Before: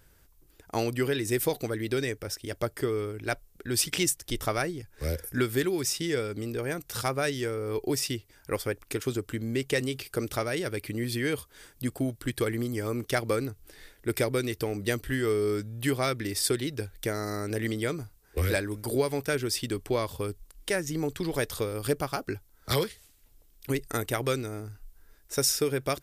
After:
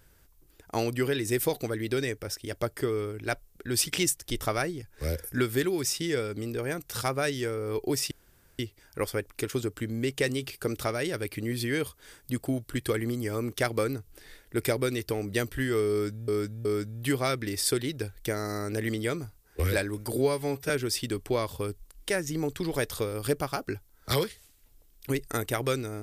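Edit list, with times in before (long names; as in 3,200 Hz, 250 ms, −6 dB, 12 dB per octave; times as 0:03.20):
0:08.11: splice in room tone 0.48 s
0:15.43–0:15.80: repeat, 3 plays
0:18.94–0:19.30: time-stretch 1.5×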